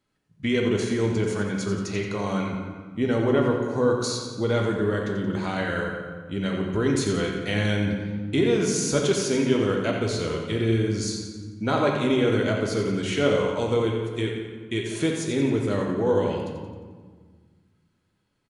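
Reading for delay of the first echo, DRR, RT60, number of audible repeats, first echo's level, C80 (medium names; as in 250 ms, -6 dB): 88 ms, -0.5 dB, 1.6 s, 3, -8.0 dB, 3.5 dB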